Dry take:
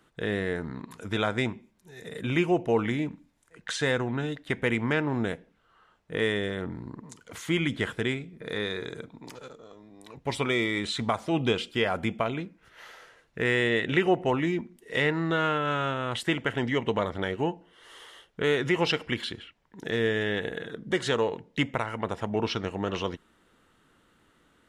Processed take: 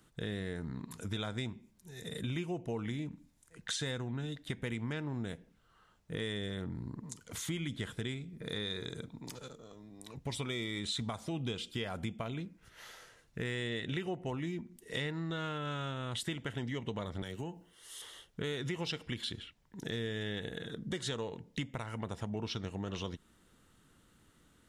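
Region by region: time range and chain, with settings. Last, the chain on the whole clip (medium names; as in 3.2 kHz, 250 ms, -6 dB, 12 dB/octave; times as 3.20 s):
17.22–18.02 s: treble shelf 6 kHz +12 dB + compression 2:1, threshold -35 dBFS + three bands expanded up and down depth 40%
whole clip: tone controls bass +9 dB, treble +10 dB; compression 3:1, threshold -31 dBFS; dynamic bell 3.6 kHz, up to +6 dB, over -56 dBFS, Q 6; trim -6 dB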